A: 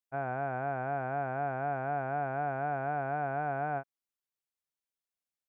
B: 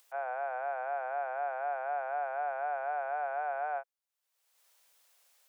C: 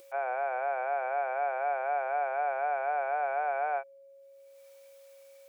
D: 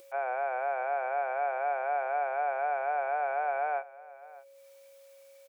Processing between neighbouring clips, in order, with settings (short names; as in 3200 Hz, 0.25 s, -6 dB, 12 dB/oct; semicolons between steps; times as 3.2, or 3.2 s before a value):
Chebyshev high-pass 490 Hz, order 5; upward compressor, threshold -46 dBFS
whine 550 Hz -57 dBFS; small resonant body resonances 340/2300 Hz, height 15 dB, ringing for 45 ms; gain +3 dB
echo 0.61 s -19.5 dB